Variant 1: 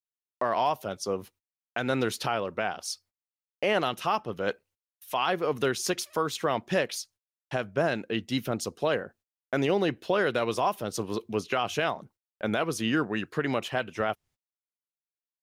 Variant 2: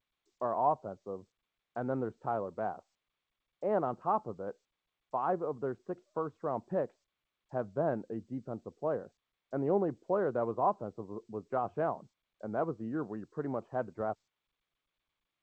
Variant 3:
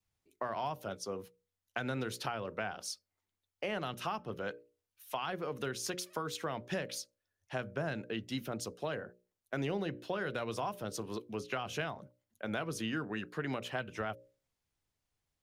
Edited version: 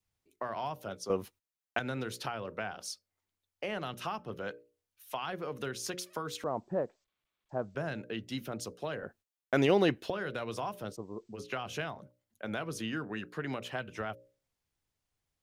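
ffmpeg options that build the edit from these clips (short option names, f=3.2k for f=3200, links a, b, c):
-filter_complex "[0:a]asplit=2[a][b];[1:a]asplit=2[c][d];[2:a]asplit=5[e][f][g][h][i];[e]atrim=end=1.102[j];[a]atrim=start=1.098:end=1.792[k];[f]atrim=start=1.788:end=6.442[l];[c]atrim=start=6.438:end=7.752[m];[g]atrim=start=7.748:end=9.032[n];[b]atrim=start=9.028:end=10.102[o];[h]atrim=start=10.098:end=10.97[p];[d]atrim=start=10.91:end=11.4[q];[i]atrim=start=11.34[r];[j][k]acrossfade=d=0.004:c1=hsin:c2=hsin[s];[s][l]acrossfade=d=0.004:c1=hsin:c2=hsin[t];[t][m]acrossfade=d=0.004:c1=hsin:c2=hsin[u];[u][n]acrossfade=d=0.004:c1=hsin:c2=hsin[v];[v][o]acrossfade=d=0.004:c1=hsin:c2=hsin[w];[w][p]acrossfade=d=0.004:c1=hsin:c2=hsin[x];[x][q]acrossfade=d=0.06:c1=tri:c2=tri[y];[y][r]acrossfade=d=0.06:c1=tri:c2=tri"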